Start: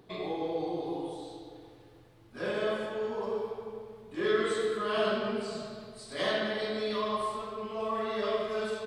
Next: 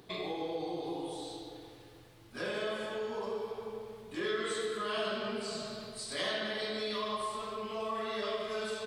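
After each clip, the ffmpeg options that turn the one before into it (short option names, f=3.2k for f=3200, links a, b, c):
-af "highshelf=f=2k:g=8.5,acompressor=threshold=-37dB:ratio=2"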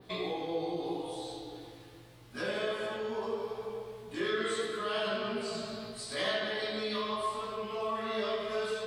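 -af "adynamicequalizer=threshold=0.00158:dfrequency=7600:dqfactor=0.74:tfrequency=7600:tqfactor=0.74:attack=5:release=100:ratio=0.375:range=2:mode=cutabove:tftype=bell,flanger=delay=15.5:depth=2.6:speed=0.79,volume=5dB"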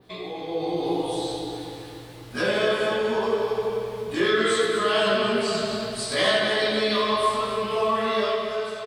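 -filter_complex "[0:a]dynaudnorm=f=100:g=13:m=11dB,asplit=2[a][b];[b]aecho=0:1:249|498|747|996|1245|1494:0.316|0.174|0.0957|0.0526|0.0289|0.0159[c];[a][c]amix=inputs=2:normalize=0"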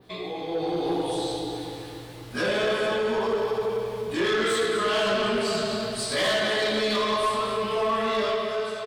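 -af "asoftclip=type=tanh:threshold=-20dB,volume=1dB"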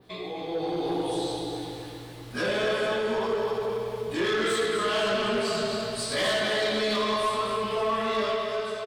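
-af "aecho=1:1:266:0.282,volume=-2dB"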